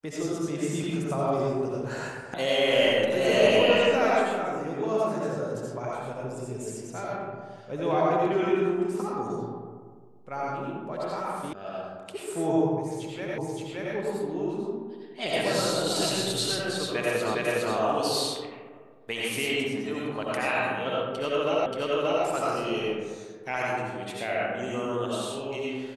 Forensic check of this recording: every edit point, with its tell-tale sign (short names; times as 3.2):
2.34 sound cut off
11.53 sound cut off
13.38 repeat of the last 0.57 s
17.35 repeat of the last 0.41 s
21.66 repeat of the last 0.58 s